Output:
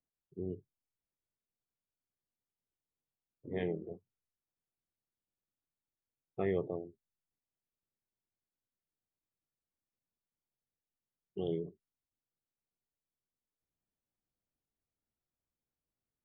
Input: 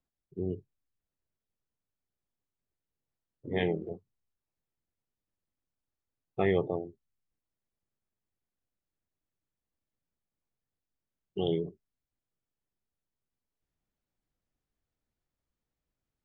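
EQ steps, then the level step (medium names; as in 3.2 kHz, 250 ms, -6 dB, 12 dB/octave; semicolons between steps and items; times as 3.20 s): low-pass 1.3 kHz 6 dB/octave; dynamic bell 820 Hz, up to -7 dB, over -55 dBFS, Q 4.9; bass shelf 67 Hz -7.5 dB; -5.0 dB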